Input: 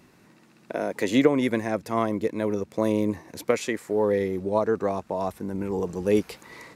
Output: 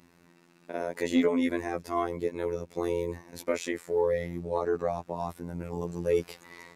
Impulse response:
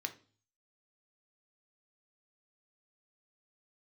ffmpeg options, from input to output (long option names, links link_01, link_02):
-af "afftfilt=real='hypot(re,im)*cos(PI*b)':imag='0':win_size=2048:overlap=0.75,acontrast=83,volume=-8dB"